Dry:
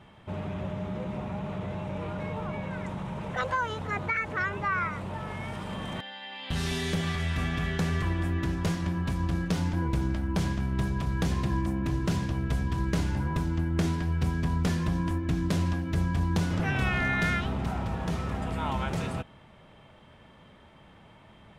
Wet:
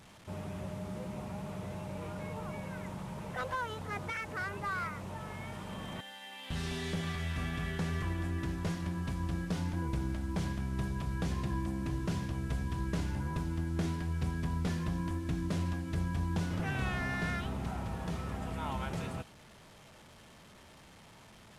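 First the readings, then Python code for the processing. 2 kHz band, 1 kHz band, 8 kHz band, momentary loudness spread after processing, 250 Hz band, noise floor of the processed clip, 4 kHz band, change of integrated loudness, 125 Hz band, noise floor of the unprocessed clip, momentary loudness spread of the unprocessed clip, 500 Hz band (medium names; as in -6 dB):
-8.0 dB, -7.0 dB, -5.5 dB, 11 LU, -6.5 dB, -56 dBFS, -6.5 dB, -6.5 dB, -6.5 dB, -54 dBFS, 8 LU, -6.5 dB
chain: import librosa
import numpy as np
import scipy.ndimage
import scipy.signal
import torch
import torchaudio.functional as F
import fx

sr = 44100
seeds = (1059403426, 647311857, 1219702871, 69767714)

y = fx.delta_mod(x, sr, bps=64000, step_db=-43.5)
y = y * 10.0 ** (-6.5 / 20.0)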